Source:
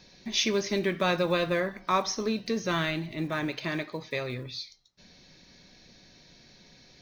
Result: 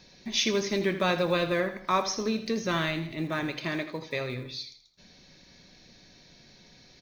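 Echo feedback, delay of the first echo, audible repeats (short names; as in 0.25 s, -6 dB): 37%, 81 ms, 3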